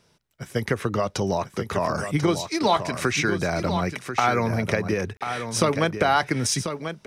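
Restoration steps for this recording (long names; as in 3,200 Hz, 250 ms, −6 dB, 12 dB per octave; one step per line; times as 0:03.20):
repair the gap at 0:05.17, 37 ms
echo removal 1,040 ms −8.5 dB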